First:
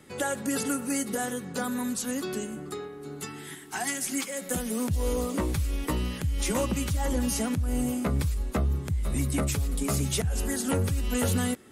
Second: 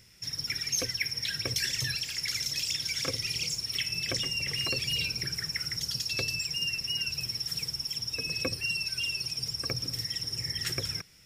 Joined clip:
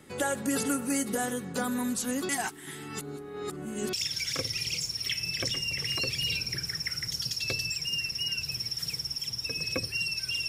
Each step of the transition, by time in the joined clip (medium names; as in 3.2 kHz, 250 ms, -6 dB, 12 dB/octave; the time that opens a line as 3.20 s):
first
2.29–3.93 s: reverse
3.93 s: go over to second from 2.62 s